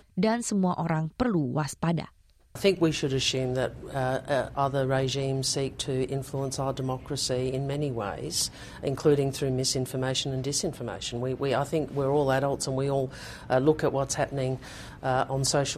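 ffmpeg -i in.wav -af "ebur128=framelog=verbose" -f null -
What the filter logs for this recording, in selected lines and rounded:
Integrated loudness:
  I:         -28.0 LUFS
  Threshold: -38.1 LUFS
Loudness range:
  LRA:         1.8 LU
  Threshold: -48.2 LUFS
  LRA low:   -29.1 LUFS
  LRA high:  -27.3 LUFS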